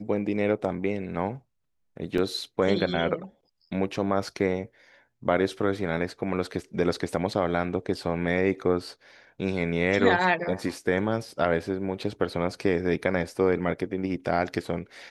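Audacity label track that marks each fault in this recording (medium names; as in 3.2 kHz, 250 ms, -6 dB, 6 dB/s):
2.180000	2.180000	dropout 2 ms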